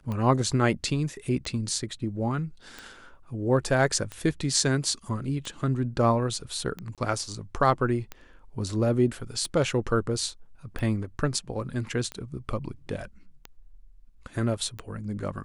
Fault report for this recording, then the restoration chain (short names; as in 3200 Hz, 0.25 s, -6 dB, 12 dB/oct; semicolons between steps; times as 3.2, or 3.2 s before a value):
tick 45 rpm -21 dBFS
6.95–6.98 gap 27 ms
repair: de-click; interpolate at 6.95, 27 ms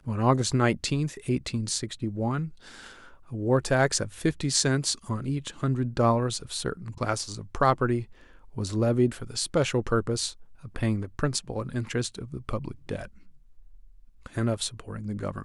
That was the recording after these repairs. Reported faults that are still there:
none